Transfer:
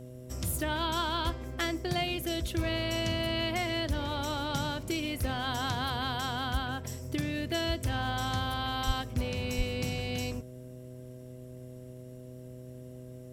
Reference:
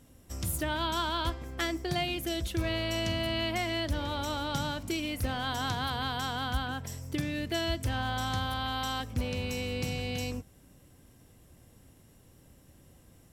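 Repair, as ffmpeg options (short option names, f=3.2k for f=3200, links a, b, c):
-filter_complex "[0:a]bandreject=f=125.7:t=h:w=4,bandreject=f=251.4:t=h:w=4,bandreject=f=377.1:t=h:w=4,bandreject=f=502.8:t=h:w=4,bandreject=f=628.5:t=h:w=4,asplit=3[a][b][c];[a]afade=t=out:st=8.86:d=0.02[d];[b]highpass=f=140:w=0.5412,highpass=f=140:w=1.3066,afade=t=in:st=8.86:d=0.02,afade=t=out:st=8.98:d=0.02[e];[c]afade=t=in:st=8.98:d=0.02[f];[d][e][f]amix=inputs=3:normalize=0,asplit=3[g][h][i];[g]afade=t=out:st=9.57:d=0.02[j];[h]highpass=f=140:w=0.5412,highpass=f=140:w=1.3066,afade=t=in:st=9.57:d=0.02,afade=t=out:st=9.69:d=0.02[k];[i]afade=t=in:st=9.69:d=0.02[l];[j][k][l]amix=inputs=3:normalize=0"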